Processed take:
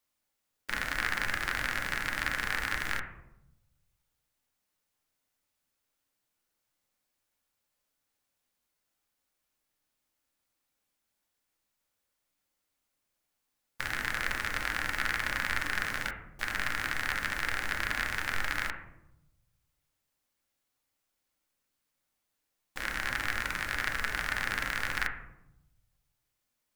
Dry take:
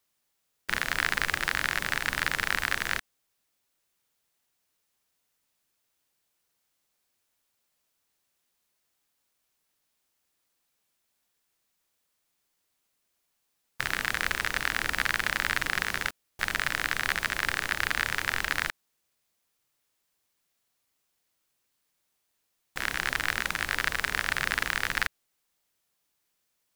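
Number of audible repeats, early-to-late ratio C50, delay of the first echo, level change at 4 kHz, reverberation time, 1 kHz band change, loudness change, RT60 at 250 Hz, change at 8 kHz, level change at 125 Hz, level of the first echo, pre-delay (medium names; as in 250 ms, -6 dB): no echo, 7.5 dB, no echo, -5.5 dB, 0.85 s, -3.0 dB, -3.5 dB, 1.2 s, -5.5 dB, -1.5 dB, no echo, 3 ms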